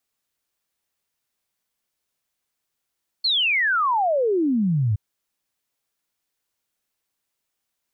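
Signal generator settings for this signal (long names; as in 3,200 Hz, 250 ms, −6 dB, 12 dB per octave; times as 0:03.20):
exponential sine sweep 4,400 Hz → 98 Hz 1.72 s −17.5 dBFS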